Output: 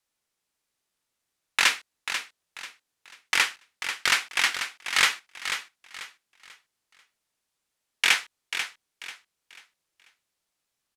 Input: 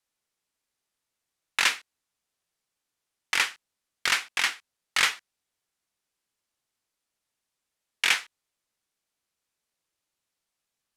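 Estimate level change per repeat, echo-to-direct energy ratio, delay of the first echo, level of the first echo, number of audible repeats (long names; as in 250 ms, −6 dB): −10.0 dB, −8.5 dB, 490 ms, −9.0 dB, 3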